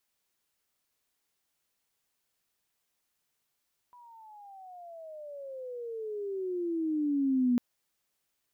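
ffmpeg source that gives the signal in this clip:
-f lavfi -i "aevalsrc='pow(10,(-22+29*(t/3.65-1))/20)*sin(2*PI*989*3.65/(-24.5*log(2)/12)*(exp(-24.5*log(2)/12*t/3.65)-1))':d=3.65:s=44100"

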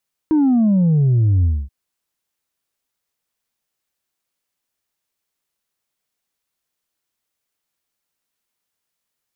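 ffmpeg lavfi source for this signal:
-f lavfi -i "aevalsrc='0.251*clip((1.38-t)/0.25,0,1)*tanh(1.26*sin(2*PI*320*1.38/log(65/320)*(exp(log(65/320)*t/1.38)-1)))/tanh(1.26)':d=1.38:s=44100"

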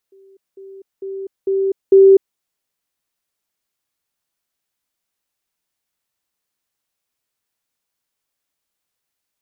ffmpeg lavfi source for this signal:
-f lavfi -i "aevalsrc='pow(10,(-44.5+10*floor(t/0.45))/20)*sin(2*PI*388*t)*clip(min(mod(t,0.45),0.25-mod(t,0.45))/0.005,0,1)':d=2.25:s=44100"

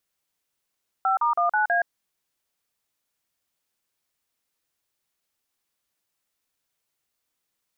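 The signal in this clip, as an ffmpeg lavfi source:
-f lavfi -i "aevalsrc='0.0841*clip(min(mod(t,0.162),0.121-mod(t,0.162))/0.002,0,1)*(eq(floor(t/0.162),0)*(sin(2*PI*770*mod(t,0.162))+sin(2*PI*1336*mod(t,0.162)))+eq(floor(t/0.162),1)*(sin(2*PI*941*mod(t,0.162))+sin(2*PI*1209*mod(t,0.162)))+eq(floor(t/0.162),2)*(sin(2*PI*697*mod(t,0.162))+sin(2*PI*1209*mod(t,0.162)))+eq(floor(t/0.162),3)*(sin(2*PI*852*mod(t,0.162))+sin(2*PI*1477*mod(t,0.162)))+eq(floor(t/0.162),4)*(sin(2*PI*697*mod(t,0.162))+sin(2*PI*1633*mod(t,0.162))))':d=0.81:s=44100"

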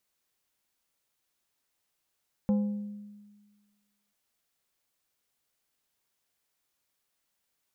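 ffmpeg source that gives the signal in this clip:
-f lavfi -i "aevalsrc='0.0891*pow(10,-3*t/1.5)*sin(2*PI*206*t)+0.0266*pow(10,-3*t/0.79)*sin(2*PI*515*t)+0.00794*pow(10,-3*t/0.568)*sin(2*PI*824*t)+0.00237*pow(10,-3*t/0.486)*sin(2*PI*1030*t)+0.000708*pow(10,-3*t/0.405)*sin(2*PI*1339*t)':d=1.64:s=44100"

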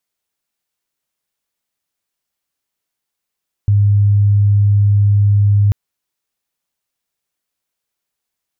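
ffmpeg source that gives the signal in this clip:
-f lavfi -i "sine=f=102:d=2.04:r=44100,volume=10.06dB"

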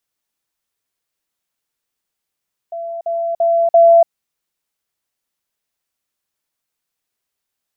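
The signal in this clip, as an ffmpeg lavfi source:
-f lavfi -i "aevalsrc='pow(10,(-23+6*floor(t/0.34))/20)*sin(2*PI*674*t)*clip(min(mod(t,0.34),0.29-mod(t,0.34))/0.005,0,1)':d=1.36:s=44100"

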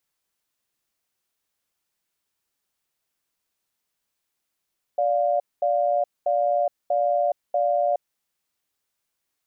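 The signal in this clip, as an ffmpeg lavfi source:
-f lavfi -i "aevalsrc='0.0841*(sin(2*PI*583*t)+sin(2*PI*705*t))*clip(min(mod(t,0.64),0.42-mod(t,0.64))/0.005,0,1)':d=3.19:s=44100"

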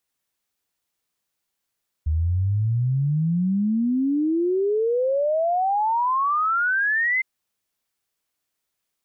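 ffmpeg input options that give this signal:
-f lavfi -i "aevalsrc='0.119*clip(min(t,5.16-t)/0.01,0,1)*sin(2*PI*75*5.16/log(2100/75)*(exp(log(2100/75)*t/5.16)-1))':d=5.16:s=44100"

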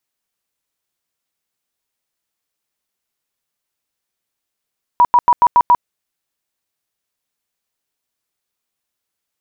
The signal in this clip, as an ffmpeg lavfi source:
-f lavfi -i "aevalsrc='0.501*sin(2*PI*969*mod(t,0.14))*lt(mod(t,0.14),47/969)':d=0.84:s=44100"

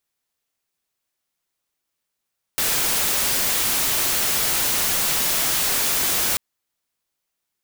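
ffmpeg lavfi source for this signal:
-f lavfi -i "anoisesrc=c=white:a=0.154:d=3.79:r=44100:seed=1"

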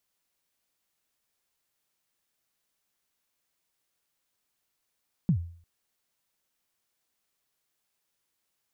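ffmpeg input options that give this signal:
-f lavfi -i "aevalsrc='0.141*pow(10,-3*t/0.5)*sin(2*PI*(200*0.087/log(85/200)*(exp(log(85/200)*min(t,0.087)/0.087)-1)+85*max(t-0.087,0)))':d=0.35:s=44100"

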